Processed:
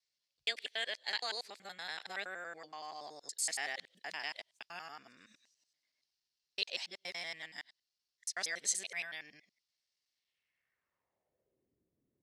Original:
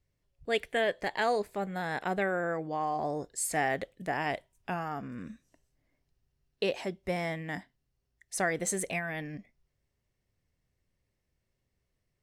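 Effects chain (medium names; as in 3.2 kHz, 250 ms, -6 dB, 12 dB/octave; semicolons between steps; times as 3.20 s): time reversed locally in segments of 94 ms; band-pass sweep 4.6 kHz -> 290 Hz, 10.12–11.75 s; trim +8.5 dB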